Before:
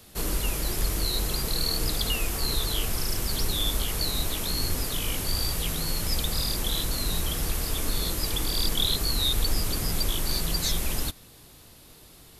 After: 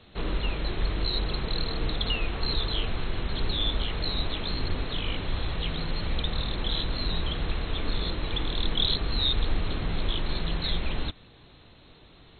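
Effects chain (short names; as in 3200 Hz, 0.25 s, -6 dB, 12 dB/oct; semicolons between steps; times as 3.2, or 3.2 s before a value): MP2 32 kbps 16000 Hz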